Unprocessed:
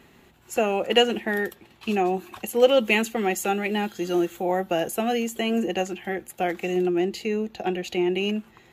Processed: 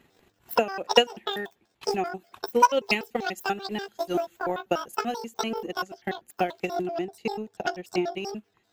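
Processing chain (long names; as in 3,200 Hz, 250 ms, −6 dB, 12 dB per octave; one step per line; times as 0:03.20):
pitch shifter gated in a rhythm +11.5 semitones, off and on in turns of 97 ms
transient designer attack +11 dB, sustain −8 dB
level −8 dB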